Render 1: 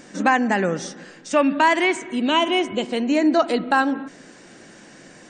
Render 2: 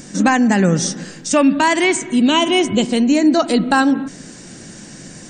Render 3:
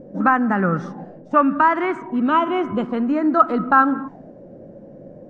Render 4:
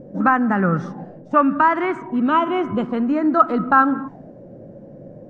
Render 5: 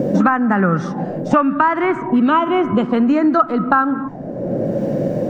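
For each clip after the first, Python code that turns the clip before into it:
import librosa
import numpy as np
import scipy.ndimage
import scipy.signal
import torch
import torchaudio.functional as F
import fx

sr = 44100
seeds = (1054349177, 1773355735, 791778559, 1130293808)

y1 = fx.bass_treble(x, sr, bass_db=14, treble_db=12)
y1 = fx.rider(y1, sr, range_db=3, speed_s=0.5)
y1 = y1 * librosa.db_to_amplitude(2.0)
y2 = fx.envelope_lowpass(y1, sr, base_hz=510.0, top_hz=1300.0, q=7.1, full_db=-13.0, direction='up')
y2 = y2 * librosa.db_to_amplitude(-6.5)
y3 = fx.peak_eq(y2, sr, hz=120.0, db=6.0, octaves=0.72)
y4 = fx.band_squash(y3, sr, depth_pct=100)
y4 = y4 * librosa.db_to_amplitude(2.5)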